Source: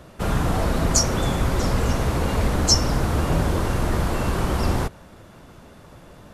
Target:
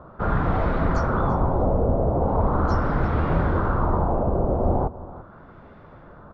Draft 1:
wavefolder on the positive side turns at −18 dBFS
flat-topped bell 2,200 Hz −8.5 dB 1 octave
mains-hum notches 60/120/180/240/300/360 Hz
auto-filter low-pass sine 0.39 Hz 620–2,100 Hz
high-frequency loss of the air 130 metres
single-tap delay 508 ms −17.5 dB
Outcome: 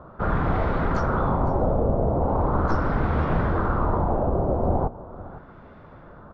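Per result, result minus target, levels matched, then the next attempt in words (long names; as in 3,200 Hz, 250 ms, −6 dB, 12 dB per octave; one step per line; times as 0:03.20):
wavefolder on the positive side: distortion +27 dB; echo 171 ms late
wavefolder on the positive side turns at −7.5 dBFS
flat-topped bell 2,200 Hz −8.5 dB 1 octave
mains-hum notches 60/120/180/240/300/360 Hz
auto-filter low-pass sine 0.39 Hz 620–2,100 Hz
high-frequency loss of the air 130 metres
single-tap delay 508 ms −17.5 dB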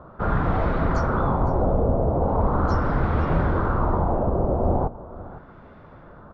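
echo 171 ms late
wavefolder on the positive side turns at −7.5 dBFS
flat-topped bell 2,200 Hz −8.5 dB 1 octave
mains-hum notches 60/120/180/240/300/360 Hz
auto-filter low-pass sine 0.39 Hz 620–2,100 Hz
high-frequency loss of the air 130 metres
single-tap delay 337 ms −17.5 dB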